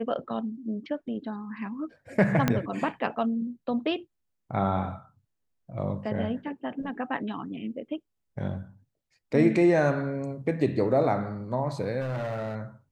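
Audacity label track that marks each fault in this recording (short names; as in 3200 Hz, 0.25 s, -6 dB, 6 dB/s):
2.480000	2.480000	pop -9 dBFS
12.000000	12.560000	clipped -27.5 dBFS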